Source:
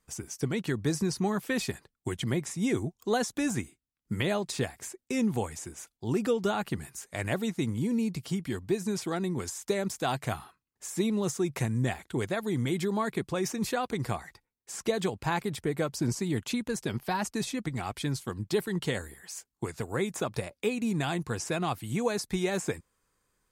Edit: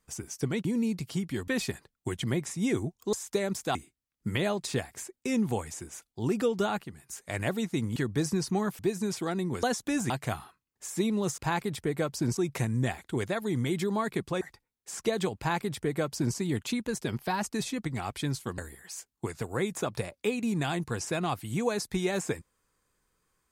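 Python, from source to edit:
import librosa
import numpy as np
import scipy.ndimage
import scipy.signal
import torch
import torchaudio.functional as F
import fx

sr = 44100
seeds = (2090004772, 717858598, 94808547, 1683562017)

y = fx.edit(x, sr, fx.swap(start_s=0.65, length_s=0.83, other_s=7.81, other_length_s=0.83),
    fx.swap(start_s=3.13, length_s=0.47, other_s=9.48, other_length_s=0.62),
    fx.clip_gain(start_s=6.67, length_s=0.27, db=-10.0),
    fx.cut(start_s=13.42, length_s=0.8),
    fx.duplicate(start_s=15.18, length_s=0.99, to_s=11.38),
    fx.cut(start_s=18.39, length_s=0.58), tone=tone)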